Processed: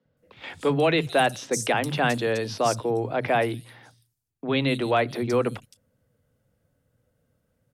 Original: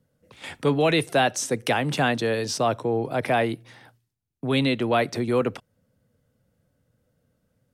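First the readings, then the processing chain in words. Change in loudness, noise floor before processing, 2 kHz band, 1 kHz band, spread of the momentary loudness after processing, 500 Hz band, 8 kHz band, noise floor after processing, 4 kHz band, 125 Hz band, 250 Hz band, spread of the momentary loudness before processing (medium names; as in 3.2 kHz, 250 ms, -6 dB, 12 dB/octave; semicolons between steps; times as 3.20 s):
-0.5 dB, -74 dBFS, 0.0 dB, 0.0 dB, 9 LU, 0.0 dB, -1.5 dB, -73 dBFS, -2.0 dB, -1.5 dB, -2.0 dB, 8 LU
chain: three bands offset in time mids, lows, highs 50/170 ms, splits 200/4800 Hz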